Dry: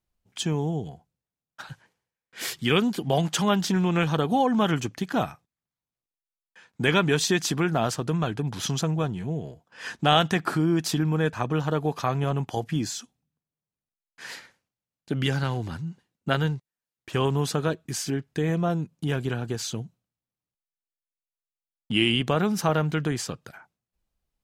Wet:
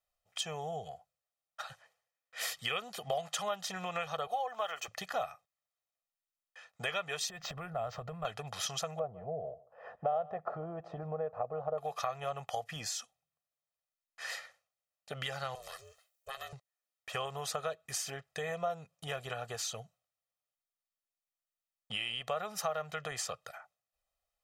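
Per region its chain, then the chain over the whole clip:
0:04.27–0:04.88: high-pass filter 480 Hz + linearly interpolated sample-rate reduction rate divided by 2×
0:07.29–0:08.25: RIAA equalisation playback + downward compressor, threshold −26 dBFS + linearly interpolated sample-rate reduction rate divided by 4×
0:08.99–0:11.78: low-pass with resonance 630 Hz, resonance Q 1.5 + single-tap delay 150 ms −22.5 dB
0:15.55–0:16.53: RIAA equalisation recording + downward compressor 3 to 1, threshold −38 dBFS + ring modulation 260 Hz
whole clip: low shelf with overshoot 420 Hz −14 dB, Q 1.5; downward compressor 4 to 1, threshold −32 dBFS; comb filter 1.6 ms, depth 69%; level −3.5 dB

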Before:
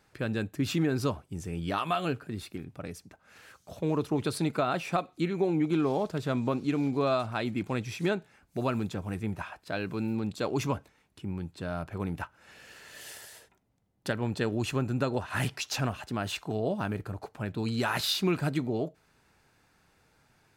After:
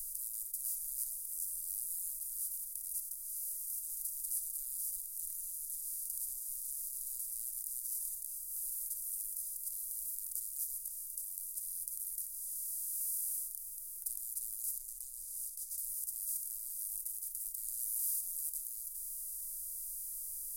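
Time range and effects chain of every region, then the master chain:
0:14.78–0:15.78: high-frequency loss of the air 130 metres + phaser with its sweep stopped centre 1,100 Hz, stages 4
whole clip: compressor on every frequency bin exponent 0.2; inverse Chebyshev band-stop filter 140–2,100 Hz, stop band 80 dB; flat-topped bell 2,400 Hz −11.5 dB; level +4.5 dB

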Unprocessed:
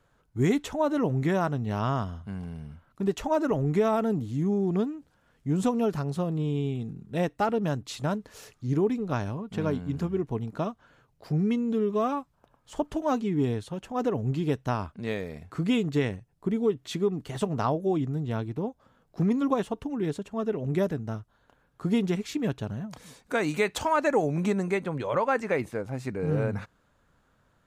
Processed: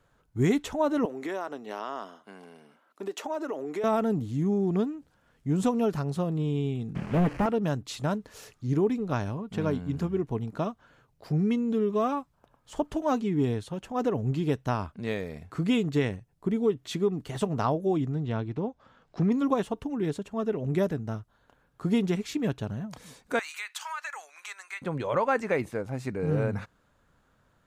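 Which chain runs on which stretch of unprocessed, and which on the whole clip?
0:01.05–0:03.84: high-pass filter 310 Hz 24 dB per octave + downward compressor 3 to 1, threshold −30 dBFS
0:06.95–0:07.46: linear delta modulator 16 kbit/s, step −43.5 dBFS + leveller curve on the samples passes 3
0:18.12–0:19.32: high-frequency loss of the air 110 metres + one half of a high-frequency compander encoder only
0:23.39–0:24.82: high-pass filter 1,200 Hz 24 dB per octave + downward compressor 3 to 1, threshold −33 dBFS
whole clip: no processing

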